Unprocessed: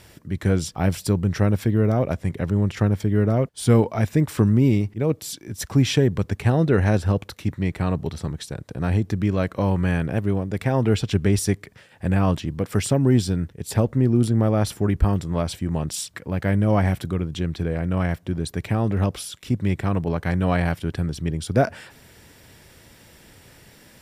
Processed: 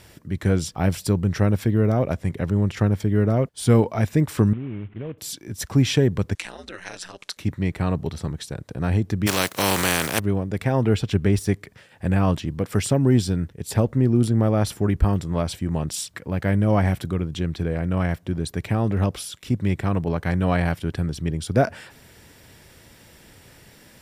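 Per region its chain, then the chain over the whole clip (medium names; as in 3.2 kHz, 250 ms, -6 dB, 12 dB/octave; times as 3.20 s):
4.53–5.18 s: CVSD coder 16 kbps + compression 5:1, threshold -29 dBFS
6.35–7.37 s: compression 5:1, threshold -24 dBFS + frequency weighting ITU-R 468 + ring modulator 91 Hz
9.26–10.18 s: spectral contrast reduction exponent 0.35 + high-pass 99 Hz
10.85–11.52 s: de-esser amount 50% + peaking EQ 6.1 kHz -3 dB 1.8 oct
whole clip: none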